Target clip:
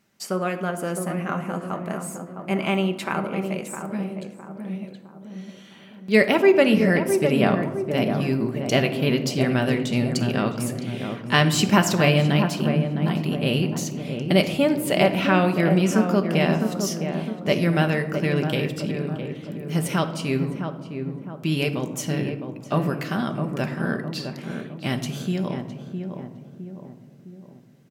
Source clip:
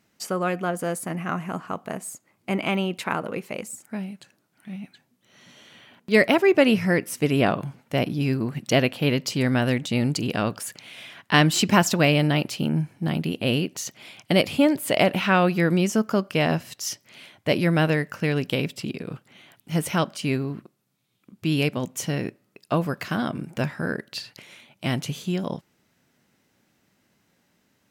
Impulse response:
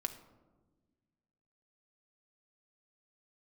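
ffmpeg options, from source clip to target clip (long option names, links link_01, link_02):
-filter_complex "[0:a]asplit=2[link_01][link_02];[link_02]adelay=660,lowpass=frequency=1100:poles=1,volume=-6dB,asplit=2[link_03][link_04];[link_04]adelay=660,lowpass=frequency=1100:poles=1,volume=0.51,asplit=2[link_05][link_06];[link_06]adelay=660,lowpass=frequency=1100:poles=1,volume=0.51,asplit=2[link_07][link_08];[link_08]adelay=660,lowpass=frequency=1100:poles=1,volume=0.51,asplit=2[link_09][link_10];[link_10]adelay=660,lowpass=frequency=1100:poles=1,volume=0.51,asplit=2[link_11][link_12];[link_12]adelay=660,lowpass=frequency=1100:poles=1,volume=0.51[link_13];[link_01][link_03][link_05][link_07][link_09][link_11][link_13]amix=inputs=7:normalize=0[link_14];[1:a]atrim=start_sample=2205[link_15];[link_14][link_15]afir=irnorm=-1:irlink=0"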